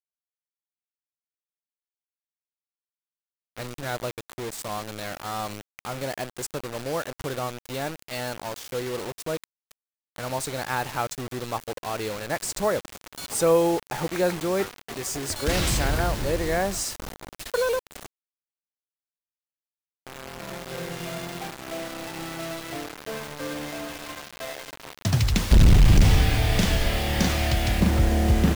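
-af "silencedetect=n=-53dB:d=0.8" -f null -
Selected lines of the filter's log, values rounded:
silence_start: 0.00
silence_end: 3.57 | silence_duration: 3.57
silence_start: 18.06
silence_end: 20.07 | silence_duration: 2.00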